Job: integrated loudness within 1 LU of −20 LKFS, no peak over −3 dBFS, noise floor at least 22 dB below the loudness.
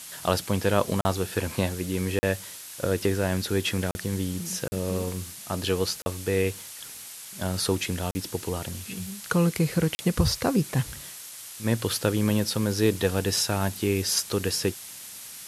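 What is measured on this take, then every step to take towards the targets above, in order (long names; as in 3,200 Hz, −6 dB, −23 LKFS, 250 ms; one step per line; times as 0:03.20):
number of dropouts 7; longest dropout 40 ms; background noise floor −42 dBFS; target noise floor −49 dBFS; integrated loudness −27.0 LKFS; sample peak −6.5 dBFS; target loudness −20.0 LKFS
→ repair the gap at 0:01.01/0:02.19/0:03.91/0:04.68/0:06.02/0:08.11/0:09.95, 40 ms
noise reduction from a noise print 7 dB
level +7 dB
brickwall limiter −3 dBFS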